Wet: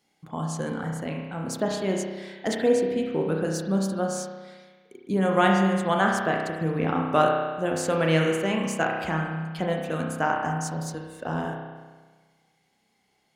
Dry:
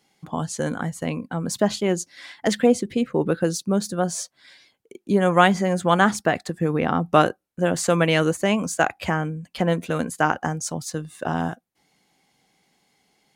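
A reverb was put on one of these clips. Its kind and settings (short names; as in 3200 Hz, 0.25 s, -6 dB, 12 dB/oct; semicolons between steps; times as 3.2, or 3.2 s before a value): spring tank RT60 1.4 s, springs 31 ms, chirp 45 ms, DRR 0 dB; gain -6.5 dB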